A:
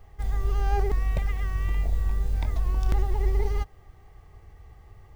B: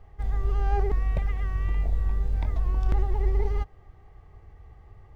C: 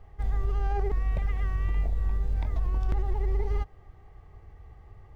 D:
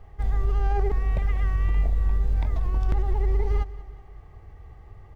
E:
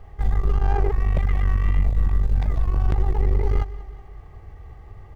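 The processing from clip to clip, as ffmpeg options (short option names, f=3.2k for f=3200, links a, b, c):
-af "lowpass=f=2.1k:p=1"
-af "alimiter=limit=-19.5dB:level=0:latency=1:release=64"
-af "aecho=1:1:186|372|558|744:0.126|0.0642|0.0327|0.0167,volume=3.5dB"
-af "aeval=exprs='(tanh(11.2*val(0)+0.6)-tanh(0.6))/11.2':c=same,volume=7dB"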